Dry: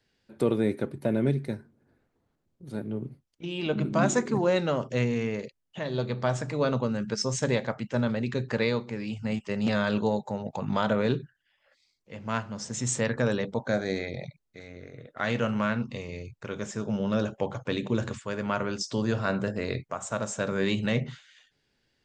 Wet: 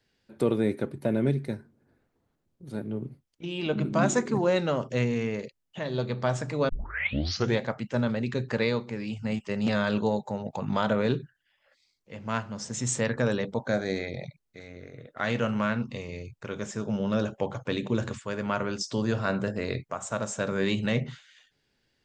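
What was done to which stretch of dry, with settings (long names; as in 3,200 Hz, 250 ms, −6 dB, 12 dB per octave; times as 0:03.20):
0:06.69: tape start 0.90 s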